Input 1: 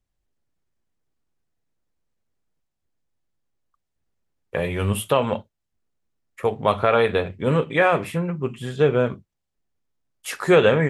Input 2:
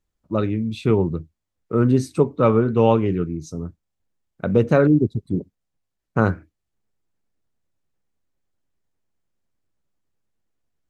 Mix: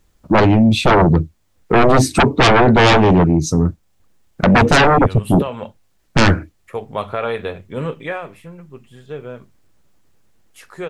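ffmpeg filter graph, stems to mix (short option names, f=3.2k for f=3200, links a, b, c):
-filter_complex "[0:a]adelay=300,volume=-4dB,afade=t=out:st=7.98:d=0.26:silence=0.375837[a];[1:a]aeval=exprs='0.708*sin(PI/2*6.31*val(0)/0.708)':c=same,volume=-0.5dB[b];[a][b]amix=inputs=2:normalize=0,alimiter=limit=-7dB:level=0:latency=1:release=384"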